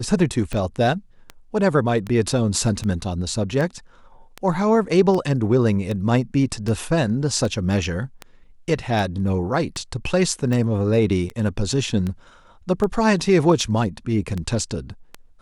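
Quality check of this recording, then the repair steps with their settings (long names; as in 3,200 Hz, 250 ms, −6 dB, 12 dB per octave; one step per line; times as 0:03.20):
scratch tick 78 rpm −15 dBFS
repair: click removal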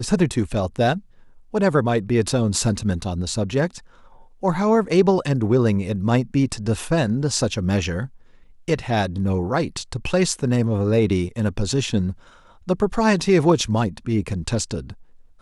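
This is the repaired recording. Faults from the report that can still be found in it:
none of them is left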